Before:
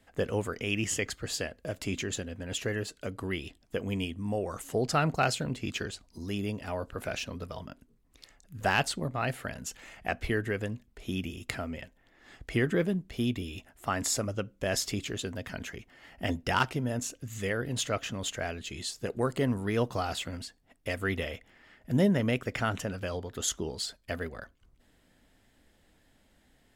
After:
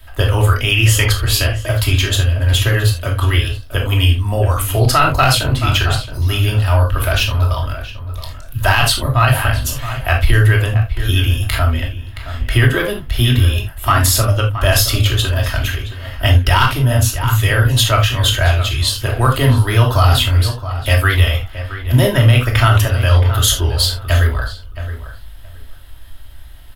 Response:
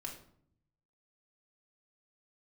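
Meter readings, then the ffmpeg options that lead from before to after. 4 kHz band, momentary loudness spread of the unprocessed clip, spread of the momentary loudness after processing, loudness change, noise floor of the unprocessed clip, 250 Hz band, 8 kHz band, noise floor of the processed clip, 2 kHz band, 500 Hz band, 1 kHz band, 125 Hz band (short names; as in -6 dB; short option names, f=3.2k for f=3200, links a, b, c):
+20.0 dB, 12 LU, 10 LU, +18.0 dB, -66 dBFS, +8.0 dB, +14.5 dB, -33 dBFS, +16.5 dB, +11.0 dB, +16.5 dB, +23.5 dB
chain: -filter_complex "[0:a]firequalizer=gain_entry='entry(110,0);entry(160,-29);entry(300,-21);entry(1100,-8);entry(2200,-14);entry(3200,-6);entry(7200,-17);entry(11000,-1)':delay=0.05:min_phase=1,acrossover=split=520|1400[a][b][c];[b]aeval=exprs='clip(val(0),-1,0.0106)':c=same[d];[a][d][c]amix=inputs=3:normalize=0,asplit=2[e][f];[f]adelay=671,lowpass=f=2.4k:p=1,volume=-12dB,asplit=2[g][h];[h]adelay=671,lowpass=f=2.4k:p=1,volume=0.18[i];[e][g][i]amix=inputs=3:normalize=0[j];[1:a]atrim=start_sample=2205,atrim=end_sample=3969[k];[j][k]afir=irnorm=-1:irlink=0,alimiter=level_in=32.5dB:limit=-1dB:release=50:level=0:latency=1,volume=-1dB"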